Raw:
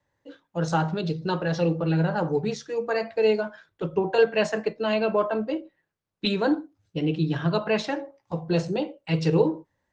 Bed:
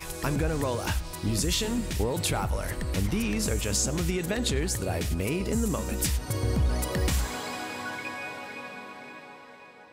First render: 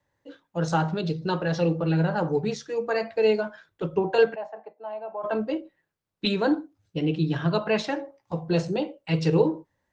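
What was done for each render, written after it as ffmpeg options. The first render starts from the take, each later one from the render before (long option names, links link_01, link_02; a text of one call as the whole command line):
ffmpeg -i in.wav -filter_complex "[0:a]asplit=3[link_01][link_02][link_03];[link_01]afade=type=out:start_time=4.34:duration=0.02[link_04];[link_02]bandpass=frequency=790:width_type=q:width=6,afade=type=in:start_time=4.34:duration=0.02,afade=type=out:start_time=5.23:duration=0.02[link_05];[link_03]afade=type=in:start_time=5.23:duration=0.02[link_06];[link_04][link_05][link_06]amix=inputs=3:normalize=0" out.wav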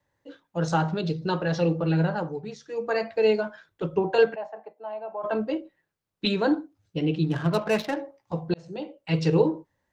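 ffmpeg -i in.wav -filter_complex "[0:a]asettb=1/sr,asplit=3[link_01][link_02][link_03];[link_01]atrim=end=7.244[link_04];[link_02]atrim=start=7.24:end=7.97,asetpts=PTS-STARTPTS,afade=type=in:duration=0.004:curve=qsin,afade=type=out:start_time=0.726:duration=0.004:curve=qsin,adynamicsmooth=sensitivity=6:basefreq=1300[link_05];[link_03]atrim=start=7.966[link_06];[link_04][link_05]acrossfade=duration=0.004:curve1=hsin:curve2=qsin[link_07];[link_07][link_06]acrossfade=duration=0.004:curve1=qsin:curve2=hsin,asplit=4[link_08][link_09][link_10][link_11];[link_08]atrim=end=2.36,asetpts=PTS-STARTPTS,afade=type=out:start_time=2.05:duration=0.31:silence=0.334965[link_12];[link_09]atrim=start=2.36:end=2.59,asetpts=PTS-STARTPTS,volume=-9.5dB[link_13];[link_10]atrim=start=2.59:end=8.54,asetpts=PTS-STARTPTS,afade=type=in:duration=0.31:silence=0.334965,afade=type=out:start_time=5.946:duration=0.004:curve=hsin[link_14];[link_11]atrim=start=8.54,asetpts=PTS-STARTPTS,afade=type=in:duration=0.59[link_15];[link_12][link_13][link_14][link_15]concat=n=4:v=0:a=1" out.wav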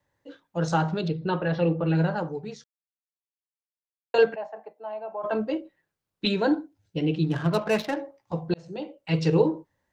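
ffmpeg -i in.wav -filter_complex "[0:a]asettb=1/sr,asplit=3[link_01][link_02][link_03];[link_01]atrim=end=1.084[link_04];[link_02]atrim=start=1.08:end=1.95,asetpts=PTS-STARTPTS,afade=type=in:duration=0.004:curve=qsin,afade=type=out:start_time=0.866:duration=0.004:curve=qsin,lowpass=frequency=3500:width=0.5412,lowpass=frequency=3500:width=1.3066[link_05];[link_03]atrim=start=1.946[link_06];[link_04][link_05]acrossfade=duration=0.004:curve1=hsin:curve2=qsin[link_07];[link_07][link_06]acrossfade=duration=0.004:curve1=qsin:curve2=hsin,asettb=1/sr,asplit=3[link_08][link_09][link_10];[link_08]atrim=end=6.304[link_11];[link_09]atrim=start=6.3:end=7.12,asetpts=PTS-STARTPTS,afade=type=in:duration=0.004:curve=qsin,afade=type=out:start_time=0.816:duration=0.004:curve=qsin,asuperstop=centerf=1200:order=4:qfactor=6.1[link_12];[link_10]atrim=start=7.116[link_13];[link_11][link_12]acrossfade=duration=0.004:curve1=hsin:curve2=qsin[link_14];[link_14][link_13]acrossfade=duration=0.004:curve1=qsin:curve2=hsin,asplit=3[link_15][link_16][link_17];[link_15]atrim=end=2.64,asetpts=PTS-STARTPTS,afade=type=out:start_time=2.636:duration=0.004:curve=hsin[link_18];[link_16]atrim=start=2.64:end=4.14,asetpts=PTS-STARTPTS,volume=0[link_19];[link_17]atrim=start=4.14,asetpts=PTS-STARTPTS,afade=type=in:duration=0.004:curve=hsin[link_20];[link_18][link_19][link_20]concat=n=3:v=0:a=1" out.wav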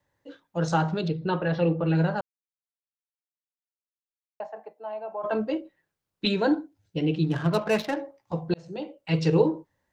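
ffmpeg -i in.wav -filter_complex "[0:a]asplit=3[link_01][link_02][link_03];[link_01]atrim=end=2.21,asetpts=PTS-STARTPTS,afade=type=out:start_time=2.206:duration=0.004:curve=hsin[link_04];[link_02]atrim=start=2.21:end=4.4,asetpts=PTS-STARTPTS,volume=0[link_05];[link_03]atrim=start=4.4,asetpts=PTS-STARTPTS,afade=type=in:duration=0.004:curve=hsin[link_06];[link_04][link_05][link_06]concat=n=3:v=0:a=1" out.wav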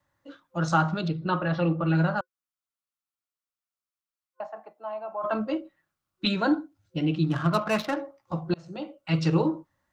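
ffmpeg -i in.wav -af "superequalizer=7b=0.398:10b=2.24" out.wav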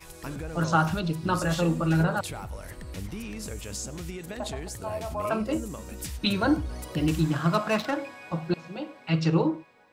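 ffmpeg -i in.wav -i bed.wav -filter_complex "[1:a]volume=-9dB[link_01];[0:a][link_01]amix=inputs=2:normalize=0" out.wav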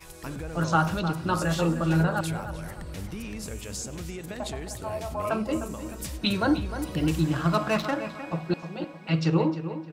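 ffmpeg -i in.wav -filter_complex "[0:a]asplit=2[link_01][link_02];[link_02]adelay=306,lowpass=frequency=3100:poles=1,volume=-10.5dB,asplit=2[link_03][link_04];[link_04]adelay=306,lowpass=frequency=3100:poles=1,volume=0.37,asplit=2[link_05][link_06];[link_06]adelay=306,lowpass=frequency=3100:poles=1,volume=0.37,asplit=2[link_07][link_08];[link_08]adelay=306,lowpass=frequency=3100:poles=1,volume=0.37[link_09];[link_01][link_03][link_05][link_07][link_09]amix=inputs=5:normalize=0" out.wav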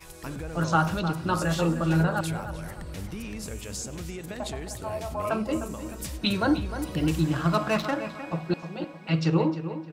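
ffmpeg -i in.wav -af anull out.wav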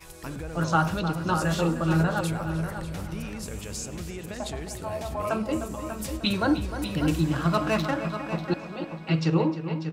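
ffmpeg -i in.wav -filter_complex "[0:a]asplit=2[link_01][link_02];[link_02]adelay=593,lowpass=frequency=4600:poles=1,volume=-9dB,asplit=2[link_03][link_04];[link_04]adelay=593,lowpass=frequency=4600:poles=1,volume=0.27,asplit=2[link_05][link_06];[link_06]adelay=593,lowpass=frequency=4600:poles=1,volume=0.27[link_07];[link_01][link_03][link_05][link_07]amix=inputs=4:normalize=0" out.wav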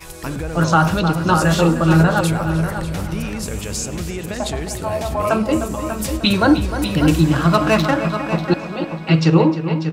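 ffmpeg -i in.wav -af "volume=10dB,alimiter=limit=-3dB:level=0:latency=1" out.wav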